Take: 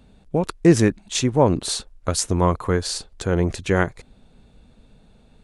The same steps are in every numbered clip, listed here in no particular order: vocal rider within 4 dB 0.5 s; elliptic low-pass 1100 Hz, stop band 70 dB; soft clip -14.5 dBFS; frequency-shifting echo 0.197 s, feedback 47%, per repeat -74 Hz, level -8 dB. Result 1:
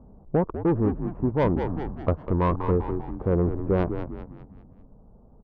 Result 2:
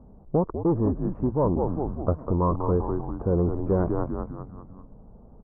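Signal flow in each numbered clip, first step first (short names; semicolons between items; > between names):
elliptic low-pass > soft clip > frequency-shifting echo > vocal rider; frequency-shifting echo > soft clip > elliptic low-pass > vocal rider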